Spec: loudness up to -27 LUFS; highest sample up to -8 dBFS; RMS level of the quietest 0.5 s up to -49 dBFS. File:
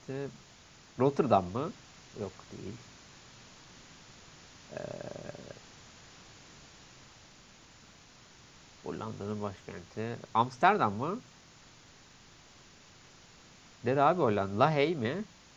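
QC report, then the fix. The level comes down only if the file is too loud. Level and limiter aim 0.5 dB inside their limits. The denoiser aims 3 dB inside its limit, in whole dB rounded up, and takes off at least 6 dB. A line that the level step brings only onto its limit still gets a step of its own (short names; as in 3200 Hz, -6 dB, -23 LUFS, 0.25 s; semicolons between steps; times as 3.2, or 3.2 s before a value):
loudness -31.5 LUFS: OK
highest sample -9.0 dBFS: OK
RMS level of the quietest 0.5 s -57 dBFS: OK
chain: none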